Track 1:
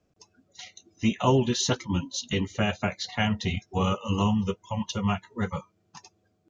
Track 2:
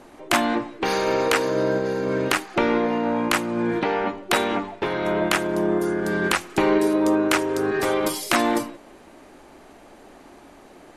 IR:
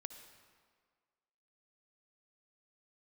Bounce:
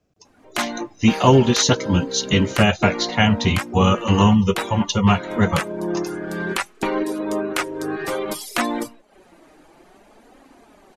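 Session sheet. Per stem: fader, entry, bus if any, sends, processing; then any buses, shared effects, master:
+1.5 dB, 0.00 s, no send, short-mantissa float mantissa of 8-bit
-9.0 dB, 0.25 s, no send, reverb removal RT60 0.58 s; flange 0.59 Hz, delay 3.6 ms, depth 3 ms, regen +46%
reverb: none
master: level rider gain up to 11.5 dB

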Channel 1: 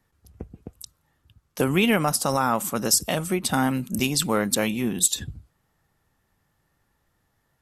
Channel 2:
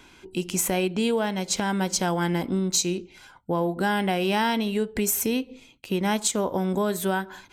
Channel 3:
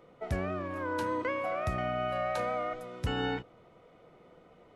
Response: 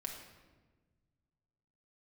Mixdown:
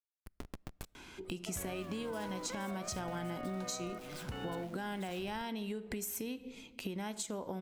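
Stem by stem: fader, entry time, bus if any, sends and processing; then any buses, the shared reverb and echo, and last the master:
+1.5 dB, 0.00 s, send -23.5 dB, compression 2:1, threshold -36 dBFS, peak gain reduction 11.5 dB; Schmitt trigger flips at -44.5 dBFS; power-law waveshaper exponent 3
-2.0 dB, 0.95 s, send -10.5 dB, compression, threshold -26 dBFS, peak gain reduction 7.5 dB
-3.0 dB, 1.25 s, no send, none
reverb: on, RT60 1.3 s, pre-delay 5 ms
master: compression 2.5:1, threshold -42 dBFS, peak gain reduction 11.5 dB

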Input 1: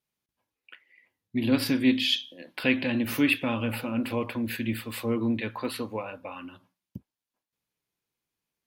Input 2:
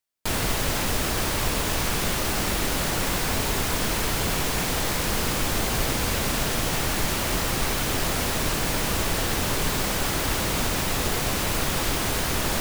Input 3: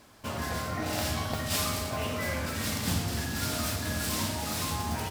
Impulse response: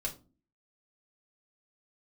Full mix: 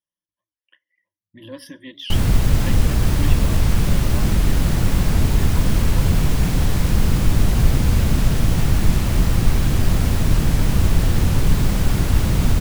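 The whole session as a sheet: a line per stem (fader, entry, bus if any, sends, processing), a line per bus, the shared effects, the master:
-13.0 dB, 0.00 s, send -15 dB, reverb removal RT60 0.89 s; rippled EQ curve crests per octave 1.2, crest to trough 18 dB
-3.5 dB, 1.85 s, no send, tone controls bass +13 dB, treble -1 dB; bass shelf 320 Hz +5 dB
mute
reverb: on, RT60 0.35 s, pre-delay 4 ms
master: warped record 78 rpm, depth 160 cents

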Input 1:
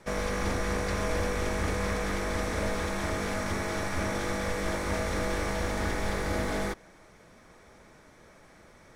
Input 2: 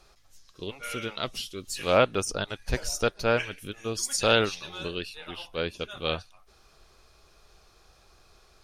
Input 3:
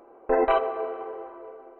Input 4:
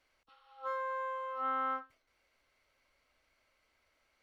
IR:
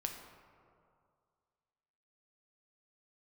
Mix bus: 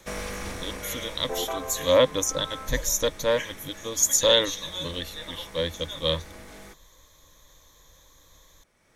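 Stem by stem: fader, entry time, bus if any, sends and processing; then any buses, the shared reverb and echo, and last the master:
-2.0 dB, 0.00 s, no send, peaking EQ 2.8 kHz +5 dB 0.77 oct; auto duck -14 dB, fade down 1.60 s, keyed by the second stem
-2.0 dB, 0.00 s, no send, rippled EQ curve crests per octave 1.1, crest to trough 17 dB
-10.5 dB, 1.00 s, no send, none
-6.0 dB, 0.90 s, no send, none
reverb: none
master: treble shelf 6.2 kHz +11 dB

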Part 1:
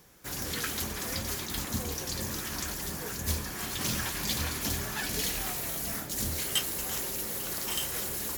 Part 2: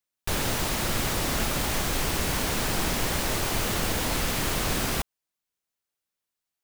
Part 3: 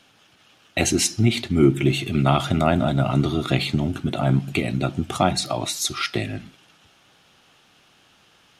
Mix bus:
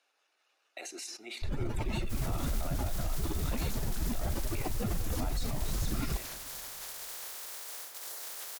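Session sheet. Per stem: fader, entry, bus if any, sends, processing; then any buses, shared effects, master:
-7.5 dB, 1.85 s, bus A, no send, echo send -21.5 dB, spectral peaks clipped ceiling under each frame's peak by 24 dB; peaking EQ 2.6 kHz -4 dB 0.72 oct
-3.5 dB, 1.15 s, no bus, no send, echo send -20.5 dB, spectral contrast enhancement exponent 2.6
-17.0 dB, 0.00 s, bus A, no send, no echo send, band-stop 3.2 kHz, Q 5.5; decay stretcher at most 74 dB/s
bus A: 0.0 dB, high-pass 420 Hz 24 dB/octave; peak limiter -32 dBFS, peak gain reduction 10 dB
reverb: none
echo: feedback delay 216 ms, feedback 57%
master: none

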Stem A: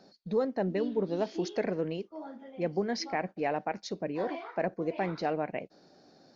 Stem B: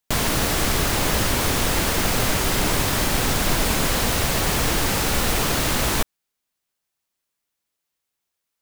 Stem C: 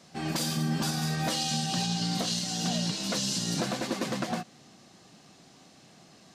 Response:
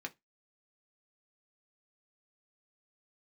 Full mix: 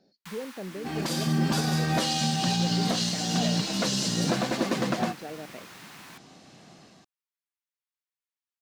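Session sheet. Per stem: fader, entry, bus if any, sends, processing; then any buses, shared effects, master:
-6.0 dB, 0.00 s, no send, peaking EQ 1.1 kHz -12.5 dB 0.93 oct
-14.5 dB, 0.15 s, send -13.5 dB, elliptic high-pass 880 Hz; auto duck -10 dB, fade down 0.60 s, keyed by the first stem
0.0 dB, 0.70 s, no send, level rider gain up to 4.5 dB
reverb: on, RT60 0.15 s, pre-delay 3 ms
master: treble shelf 5.1 kHz -6 dB

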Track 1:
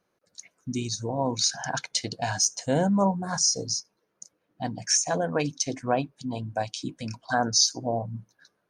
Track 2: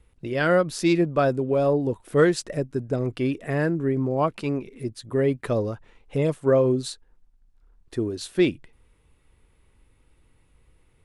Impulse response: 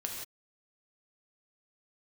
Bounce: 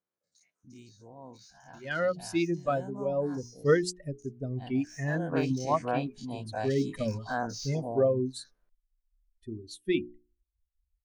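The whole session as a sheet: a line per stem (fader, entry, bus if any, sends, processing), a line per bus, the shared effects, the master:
5.10 s -20.5 dB -> 5.37 s -10.5 dB, 0.00 s, no send, every event in the spectrogram widened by 60 ms; de-esser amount 85%
-2.5 dB, 1.50 s, no send, expander on every frequency bin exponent 2; hum notches 60/120/180/240/300/360/420 Hz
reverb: none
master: gain riding within 3 dB 2 s

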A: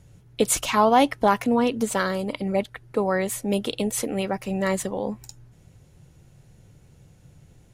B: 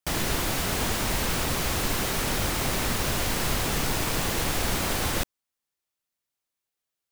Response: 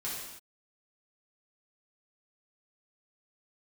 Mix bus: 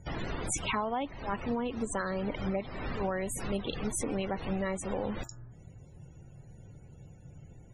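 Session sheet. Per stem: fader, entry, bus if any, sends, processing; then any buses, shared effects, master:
+1.5 dB, 0.00 s, no send, attacks held to a fixed rise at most 210 dB/s
-6.5 dB, 0.00 s, no send, treble shelf 9.1 kHz -3.5 dB; de-hum 112.8 Hz, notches 15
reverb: none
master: loudest bins only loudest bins 64; compression 12:1, threshold -29 dBFS, peak gain reduction 18 dB

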